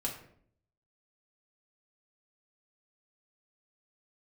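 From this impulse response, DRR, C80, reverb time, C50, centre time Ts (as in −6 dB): −3.5 dB, 11.0 dB, 0.60 s, 7.5 dB, 23 ms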